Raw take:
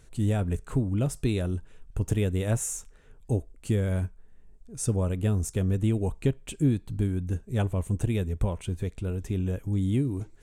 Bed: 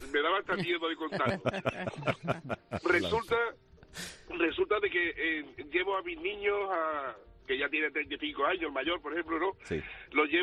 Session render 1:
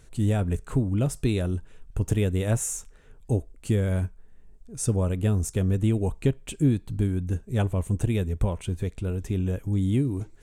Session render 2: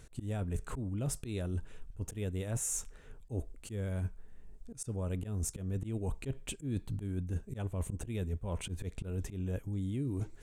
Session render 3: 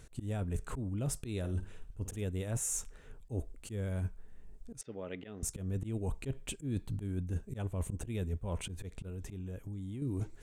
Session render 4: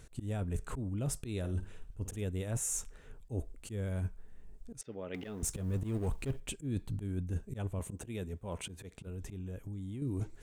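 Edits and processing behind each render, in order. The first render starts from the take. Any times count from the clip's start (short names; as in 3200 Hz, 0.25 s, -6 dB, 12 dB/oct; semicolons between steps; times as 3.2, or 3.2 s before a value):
gain +2 dB
auto swell 0.112 s; reverse; compressor 10:1, threshold -32 dBFS, peak gain reduction 14 dB; reverse
1.38–2.22 flutter echo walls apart 9.1 m, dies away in 0.29 s; 4.81–5.43 speaker cabinet 280–4200 Hz, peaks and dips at 1000 Hz -5 dB, 2000 Hz +10 dB, 3200 Hz +5 dB; 8.69–10.02 compressor 4:1, threshold -38 dBFS
5.14–6.4 G.711 law mismatch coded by mu; 7.79–9.07 HPF 170 Hz 6 dB/oct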